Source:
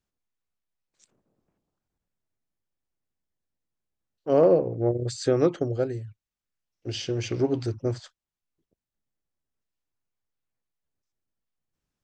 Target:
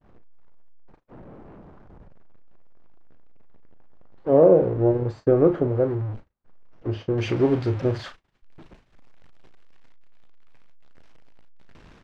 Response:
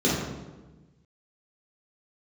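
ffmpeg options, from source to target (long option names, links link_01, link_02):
-filter_complex "[0:a]aeval=exprs='val(0)+0.5*0.0282*sgn(val(0))':channel_layout=same,asetnsamples=nb_out_samples=441:pad=0,asendcmd='7.18 lowpass f 2700',lowpass=1100,agate=range=-47dB:threshold=-38dB:ratio=16:detection=peak,asplit=2[link_01][link_02];[link_02]adelay=37,volume=-10.5dB[link_03];[link_01][link_03]amix=inputs=2:normalize=0,volume=3dB"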